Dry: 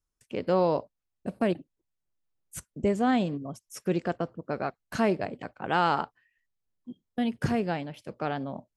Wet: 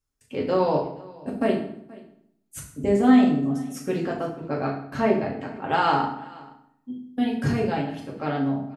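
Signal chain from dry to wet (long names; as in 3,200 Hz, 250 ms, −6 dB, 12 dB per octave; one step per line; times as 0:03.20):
0:04.81–0:05.41: low-pass filter 2,700 Hz 6 dB per octave
single-tap delay 477 ms −22.5 dB
convolution reverb RT60 0.70 s, pre-delay 4 ms, DRR −3 dB
level −1 dB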